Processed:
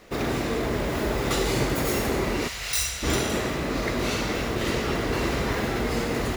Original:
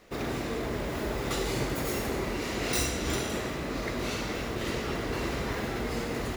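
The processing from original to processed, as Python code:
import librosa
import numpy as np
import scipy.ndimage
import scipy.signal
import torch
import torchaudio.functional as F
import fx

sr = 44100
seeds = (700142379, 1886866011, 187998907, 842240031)

y = fx.tone_stack(x, sr, knobs='10-0-10', at=(2.47, 3.02), fade=0.02)
y = F.gain(torch.from_numpy(y), 6.0).numpy()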